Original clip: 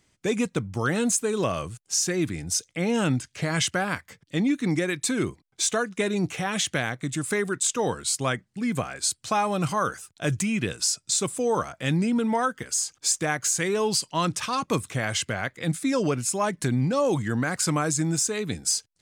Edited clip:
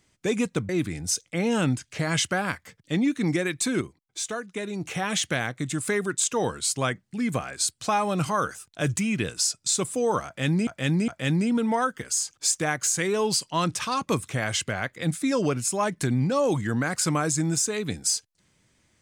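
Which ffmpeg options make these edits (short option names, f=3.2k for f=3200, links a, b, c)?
-filter_complex "[0:a]asplit=6[a][b][c][d][e][f];[a]atrim=end=0.692[g];[b]atrim=start=2.118:end=5.242[h];[c]atrim=start=5.238:end=6.282,asetpts=PTS-STARTPTS,volume=-6.5dB[i];[d]atrim=start=6.278:end=12.102[j];[e]atrim=start=11.688:end=12.102[k];[f]atrim=start=11.688[l];[g][h]acrossfade=d=0.004:c1=hsin:c2=hsin[m];[m][i]acrossfade=d=0.004:c1=hsin:c2=hsin[n];[n][j]acrossfade=d=0.004:c1=hsin:c2=hsin[o];[o][k]acrossfade=d=0.004:c1=hsin:c2=hsin[p];[p][l]acrossfade=d=0.004:c1=hsin:c2=hsin"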